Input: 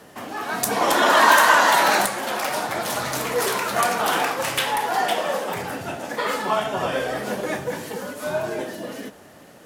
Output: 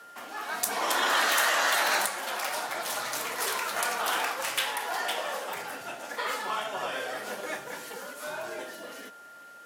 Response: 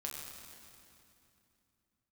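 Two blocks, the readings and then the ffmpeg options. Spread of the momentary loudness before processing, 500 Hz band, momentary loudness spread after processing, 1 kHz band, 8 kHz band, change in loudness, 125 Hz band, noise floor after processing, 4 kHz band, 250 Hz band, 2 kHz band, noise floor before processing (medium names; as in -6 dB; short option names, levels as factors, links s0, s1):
16 LU, -11.5 dB, 16 LU, -10.0 dB, -4.5 dB, -8.0 dB, -20.0 dB, -49 dBFS, -5.0 dB, -15.0 dB, -7.0 dB, -47 dBFS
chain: -af "aeval=exprs='val(0)+0.00891*sin(2*PI*1400*n/s)':c=same,afftfilt=real='re*lt(hypot(re,im),0.708)':imag='im*lt(hypot(re,im),0.708)':win_size=1024:overlap=0.75,highpass=f=890:p=1,volume=0.596"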